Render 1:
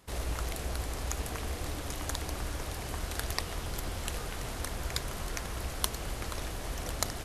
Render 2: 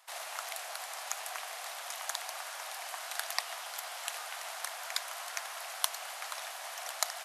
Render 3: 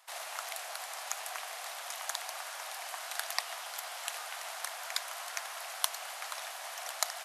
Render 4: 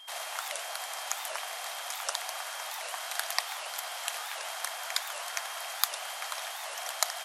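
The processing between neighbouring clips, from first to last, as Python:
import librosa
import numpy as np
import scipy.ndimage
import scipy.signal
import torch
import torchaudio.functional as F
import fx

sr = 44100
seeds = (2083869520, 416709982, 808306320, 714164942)

y1 = scipy.signal.sosfilt(scipy.signal.ellip(4, 1.0, 80, 680.0, 'highpass', fs=sr, output='sos'), x)
y1 = y1 * 10.0 ** (1.5 / 20.0)
y2 = y1
y3 = y2 + 10.0 ** (-51.0 / 20.0) * np.sin(2.0 * np.pi * 3200.0 * np.arange(len(y2)) / sr)
y3 = fx.record_warp(y3, sr, rpm=78.0, depth_cents=250.0)
y3 = y3 * 10.0 ** (3.5 / 20.0)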